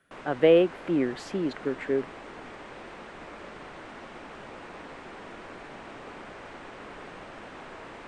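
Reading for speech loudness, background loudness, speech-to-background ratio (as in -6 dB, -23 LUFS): -26.0 LUFS, -43.5 LUFS, 17.5 dB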